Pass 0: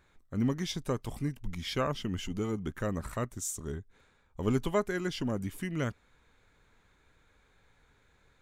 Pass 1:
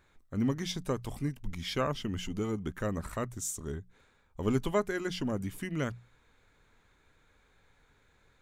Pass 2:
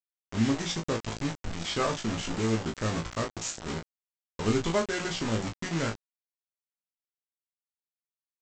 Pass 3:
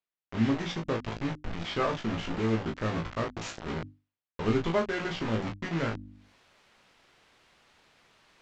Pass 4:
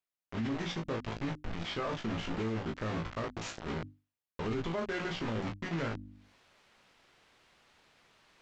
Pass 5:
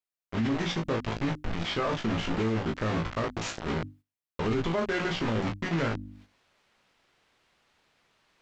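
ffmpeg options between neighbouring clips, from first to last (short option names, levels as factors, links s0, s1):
-af "bandreject=f=60:t=h:w=6,bandreject=f=120:t=h:w=6,bandreject=f=180:t=h:w=6"
-af "aresample=16000,acrusher=bits=5:mix=0:aa=0.000001,aresample=44100,aecho=1:1:18|36:0.596|0.473,volume=1.12"
-af "lowpass=3100,bandreject=f=50:t=h:w=6,bandreject=f=100:t=h:w=6,bandreject=f=150:t=h:w=6,bandreject=f=200:t=h:w=6,bandreject=f=250:t=h:w=6,bandreject=f=300:t=h:w=6,areverse,acompressor=mode=upward:threshold=0.0282:ratio=2.5,areverse"
-af "alimiter=limit=0.0631:level=0:latency=1:release=14,volume=0.75"
-af "agate=range=0.316:threshold=0.00126:ratio=16:detection=peak,volume=2.11"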